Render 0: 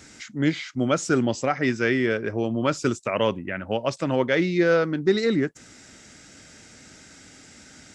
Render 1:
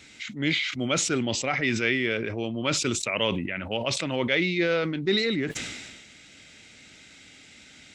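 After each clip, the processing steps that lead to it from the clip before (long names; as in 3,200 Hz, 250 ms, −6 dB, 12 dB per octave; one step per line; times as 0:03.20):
flat-topped bell 2,900 Hz +10.5 dB 1.2 octaves
level that may fall only so fast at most 38 dB per second
level −6 dB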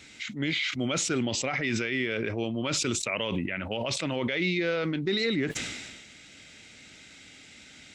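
brickwall limiter −18.5 dBFS, peak gain reduction 9 dB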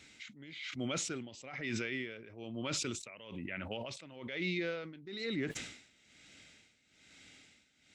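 amplitude tremolo 1.1 Hz, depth 83%
level −7.5 dB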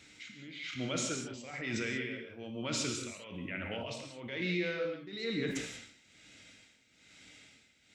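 reverb whose tail is shaped and stops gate 210 ms flat, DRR 2 dB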